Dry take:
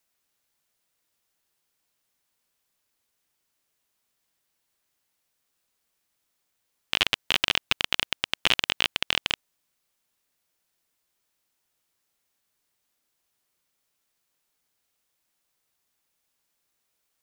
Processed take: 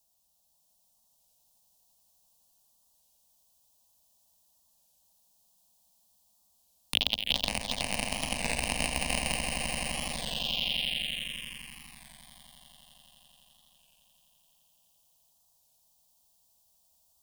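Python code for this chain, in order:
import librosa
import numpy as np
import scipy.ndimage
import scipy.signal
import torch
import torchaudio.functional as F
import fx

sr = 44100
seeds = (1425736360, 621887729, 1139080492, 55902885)

y = fx.peak_eq(x, sr, hz=71.0, db=13.0, octaves=0.97)
y = fx.over_compress(y, sr, threshold_db=-30.0, ratio=-1.0)
y = fx.leveller(y, sr, passes=2)
y = fx.fixed_phaser(y, sr, hz=370.0, stages=6)
y = fx.echo_swell(y, sr, ms=85, loudest=8, wet_db=-9.0)
y = fx.env_phaser(y, sr, low_hz=360.0, high_hz=3400.0, full_db=-25.0)
y = fx.record_warp(y, sr, rpm=33.33, depth_cents=100.0)
y = y * 10.0 ** (4.5 / 20.0)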